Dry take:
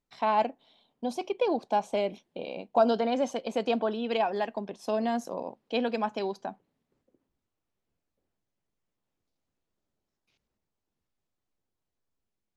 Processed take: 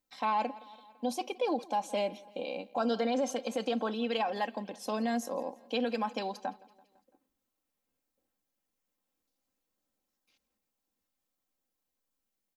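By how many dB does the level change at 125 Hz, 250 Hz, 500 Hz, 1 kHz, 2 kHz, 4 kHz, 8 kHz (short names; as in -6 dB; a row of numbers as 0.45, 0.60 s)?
n/a, -2.0 dB, -5.0 dB, -3.5 dB, -1.5 dB, -0.5 dB, +4.5 dB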